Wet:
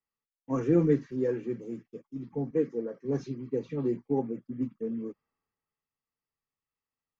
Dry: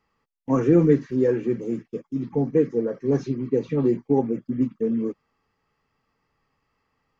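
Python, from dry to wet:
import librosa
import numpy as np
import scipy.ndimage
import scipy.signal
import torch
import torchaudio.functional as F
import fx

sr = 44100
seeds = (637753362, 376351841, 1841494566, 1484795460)

y = fx.highpass(x, sr, hz=150.0, slope=12, at=(2.5, 3.05))
y = fx.band_widen(y, sr, depth_pct=40)
y = y * librosa.db_to_amplitude(-8.5)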